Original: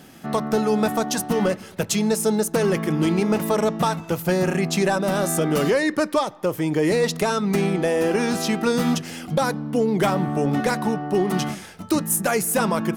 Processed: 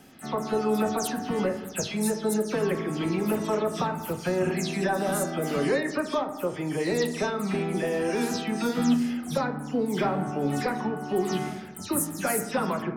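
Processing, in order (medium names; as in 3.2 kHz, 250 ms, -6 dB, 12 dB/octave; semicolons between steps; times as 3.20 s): delay that grows with frequency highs early, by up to 137 ms; on a send: treble shelf 2.5 kHz +10 dB + reverberation RT60 1.1 s, pre-delay 4 ms, DRR 5.5 dB; on the sum: trim -6.5 dB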